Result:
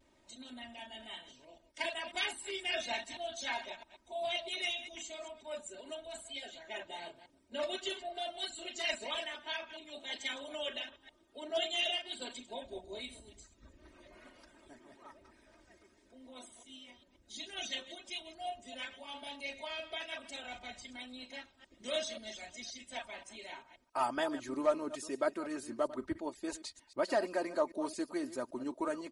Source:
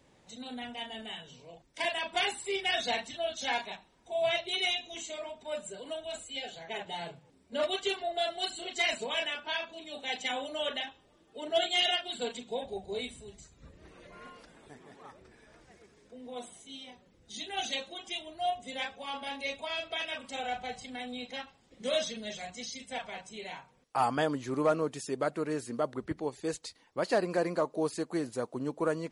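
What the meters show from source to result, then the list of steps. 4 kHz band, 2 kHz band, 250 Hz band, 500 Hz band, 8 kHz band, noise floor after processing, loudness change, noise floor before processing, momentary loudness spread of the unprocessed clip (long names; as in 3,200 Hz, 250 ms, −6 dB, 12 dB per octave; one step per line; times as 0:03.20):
−5.5 dB, −5.0 dB, −4.5 dB, −5.0 dB, −3.5 dB, −69 dBFS, −5.0 dB, −65 dBFS, 16 LU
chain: delay that plays each chunk backwards 132 ms, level −13 dB
harmonic and percussive parts rebalanced harmonic −7 dB
pitch vibrato 1 Hz 47 cents
comb filter 3.2 ms, depth 75%
level −4 dB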